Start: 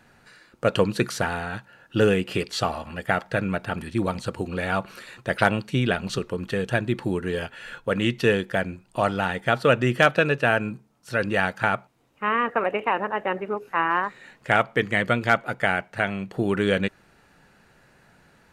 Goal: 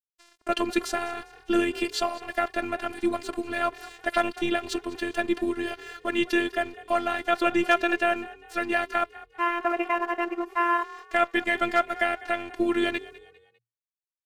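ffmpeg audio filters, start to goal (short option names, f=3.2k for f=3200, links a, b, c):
-filter_complex "[0:a]bandreject=f=1.5k:w=18,agate=range=-7dB:threshold=-54dB:ratio=16:detection=peak,highpass=f=120:p=1,asplit=2[a][b];[b]alimiter=limit=-12.5dB:level=0:latency=1,volume=-3dB[c];[a][c]amix=inputs=2:normalize=0,afftfilt=real='hypot(re,im)*cos(PI*b)':imag='0':win_size=512:overlap=0.75,aeval=exprs='sgn(val(0))*max(abs(val(0))-0.00422,0)':c=same,aeval=exprs='0.75*(cos(1*acos(clip(val(0)/0.75,-1,1)))-cos(1*PI/2))+0.00473*(cos(4*acos(clip(val(0)/0.75,-1,1)))-cos(4*PI/2))':c=same,atempo=1.3,asplit=4[d][e][f][g];[e]adelay=200,afreqshift=39,volume=-19dB[h];[f]adelay=400,afreqshift=78,volume=-27.6dB[i];[g]adelay=600,afreqshift=117,volume=-36.3dB[j];[d][h][i][j]amix=inputs=4:normalize=0,volume=-1.5dB"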